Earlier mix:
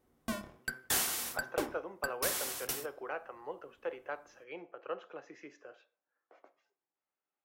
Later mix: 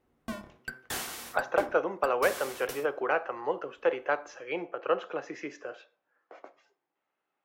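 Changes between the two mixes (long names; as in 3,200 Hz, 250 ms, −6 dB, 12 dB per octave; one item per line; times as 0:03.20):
speech +12.0 dB
background: add high-shelf EQ 4,800 Hz −8.5 dB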